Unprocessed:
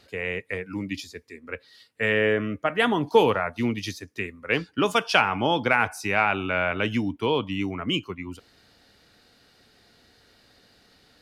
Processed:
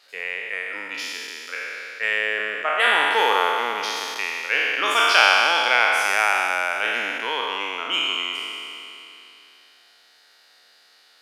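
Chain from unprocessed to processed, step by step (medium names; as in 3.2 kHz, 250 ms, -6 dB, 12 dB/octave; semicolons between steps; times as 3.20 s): spectral sustain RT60 2.99 s; high-pass 870 Hz 12 dB/octave; trim +1 dB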